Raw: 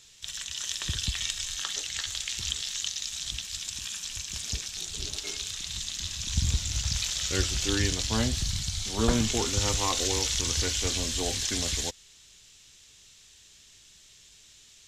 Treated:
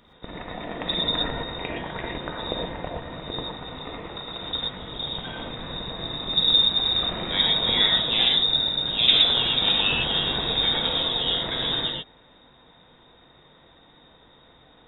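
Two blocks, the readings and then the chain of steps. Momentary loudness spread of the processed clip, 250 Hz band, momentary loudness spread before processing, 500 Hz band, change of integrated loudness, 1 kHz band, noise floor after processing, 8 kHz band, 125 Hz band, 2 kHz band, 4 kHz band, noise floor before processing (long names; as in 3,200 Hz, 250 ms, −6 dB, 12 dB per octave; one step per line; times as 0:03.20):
17 LU, 0.0 dB, 8 LU, +3.5 dB, +7.0 dB, +6.5 dB, −55 dBFS, below −40 dB, −4.0 dB, +6.0 dB, +10.5 dB, −55 dBFS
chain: voice inversion scrambler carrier 3,700 Hz
reverb whose tail is shaped and stops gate 140 ms rising, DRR −0.5 dB
level +2.5 dB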